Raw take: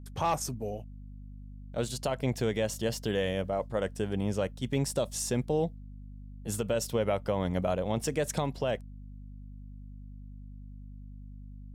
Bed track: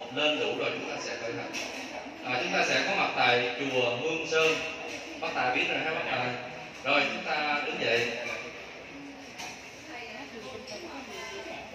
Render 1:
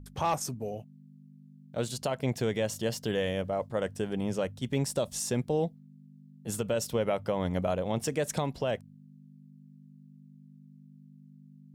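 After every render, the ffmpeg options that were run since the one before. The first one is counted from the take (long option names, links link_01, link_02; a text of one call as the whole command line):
ffmpeg -i in.wav -af "bandreject=frequency=50:width_type=h:width=4,bandreject=frequency=100:width_type=h:width=4" out.wav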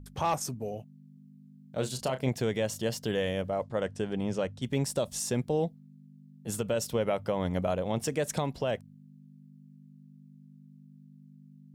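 ffmpeg -i in.wav -filter_complex "[0:a]asettb=1/sr,asplit=3[link_01][link_02][link_03];[link_01]atrim=end=1.144[link_04];[link_02]atrim=start=1.14:end=2.29,asetpts=PTS-STARTPTS,afade=type=in:duration=0.004:curve=qsin,afade=type=out:start_time=1.146:duration=0.004:curve=qsin,asplit=2[link_05][link_06];[link_06]adelay=31,volume=-9.5dB[link_07];[link_05][link_07]amix=inputs=2:normalize=0,atrim=end_sample=50715[link_08];[link_03]atrim=start=2.286[link_09];[link_04][link_08]acrossfade=duration=0.004:curve1=hsin:curve2=qsin[link_10];[link_10][link_09]acrossfade=duration=0.004:curve1=qsin:curve2=hsin,asettb=1/sr,asplit=3[link_11][link_12][link_13];[link_11]atrim=end=3.634[link_14];[link_12]atrim=start=3.63:end=4.62,asetpts=PTS-STARTPTS,afade=type=in:duration=0.004:curve=qsin,afade=type=out:start_time=0.986:duration=0.004:curve=qsin,lowpass=7700[link_15];[link_13]atrim=start=4.616[link_16];[link_14][link_15]acrossfade=duration=0.004:curve1=hsin:curve2=qsin[link_17];[link_17][link_16]acrossfade=duration=0.004:curve1=qsin:curve2=hsin" out.wav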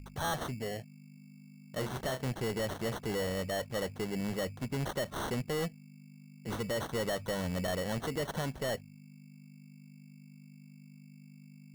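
ffmpeg -i in.wav -af "acrusher=samples=18:mix=1:aa=0.000001,asoftclip=type=tanh:threshold=-29dB" out.wav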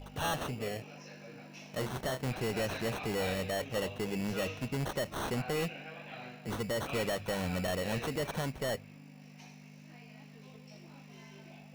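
ffmpeg -i in.wav -i bed.wav -filter_complex "[1:a]volume=-16.5dB[link_01];[0:a][link_01]amix=inputs=2:normalize=0" out.wav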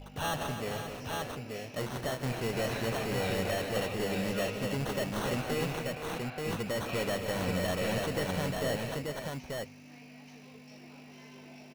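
ffmpeg -i in.wav -af "aecho=1:1:155|180|263|467|532|883:0.237|0.211|0.299|0.251|0.299|0.668" out.wav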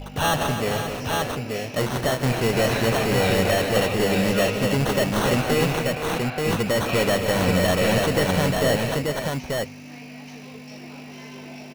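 ffmpeg -i in.wav -af "volume=11.5dB" out.wav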